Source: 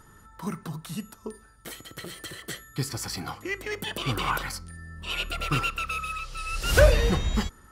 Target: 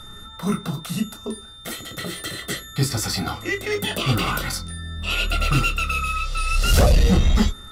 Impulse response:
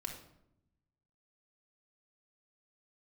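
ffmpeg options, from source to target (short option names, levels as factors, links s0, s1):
-filter_complex "[1:a]atrim=start_sample=2205,atrim=end_sample=3528,asetrate=88200,aresample=44100[s0];[0:a][s0]afir=irnorm=-1:irlink=0,acontrast=88,aeval=exprs='val(0)+0.00316*sin(2*PI*3600*n/s)':c=same,acrossover=split=430|3000[s1][s2][s3];[s2]acompressor=threshold=0.02:ratio=6[s4];[s1][s4][s3]amix=inputs=3:normalize=0,aeval=exprs='0.398*sin(PI/2*2.24*val(0)/0.398)':c=same,volume=0.794"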